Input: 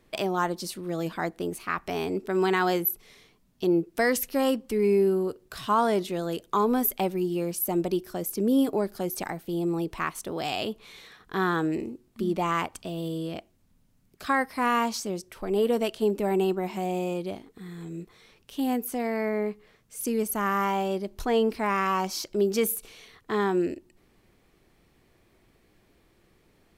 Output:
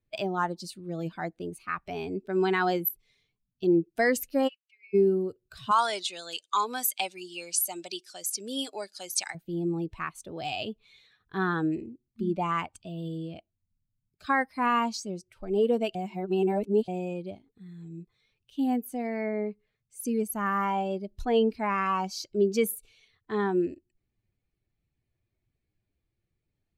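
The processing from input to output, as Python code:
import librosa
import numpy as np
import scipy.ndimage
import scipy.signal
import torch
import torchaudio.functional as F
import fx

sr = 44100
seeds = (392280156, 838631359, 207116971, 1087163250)

y = fx.ladder_bandpass(x, sr, hz=2800.0, resonance_pct=50, at=(4.47, 4.93), fade=0.02)
y = fx.weighting(y, sr, curve='ITU-R 468', at=(5.71, 9.35))
y = fx.edit(y, sr, fx.reverse_span(start_s=15.95, length_s=0.93), tone=tone)
y = fx.bin_expand(y, sr, power=1.5)
y = scipy.signal.sosfilt(scipy.signal.bessel(2, 12000.0, 'lowpass', norm='mag', fs=sr, output='sos'), y)
y = fx.notch(y, sr, hz=5300.0, q=27.0)
y = y * 10.0 ** (1.5 / 20.0)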